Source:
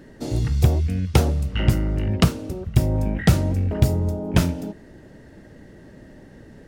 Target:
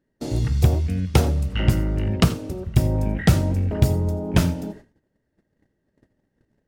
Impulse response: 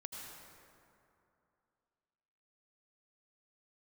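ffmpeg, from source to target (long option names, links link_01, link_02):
-filter_complex "[0:a]agate=range=-28dB:threshold=-40dB:ratio=16:detection=peak,asplit=2[link_01][link_02];[1:a]atrim=start_sample=2205,atrim=end_sample=4410[link_03];[link_02][link_03]afir=irnorm=-1:irlink=0,volume=2dB[link_04];[link_01][link_04]amix=inputs=2:normalize=0,volume=-4.5dB"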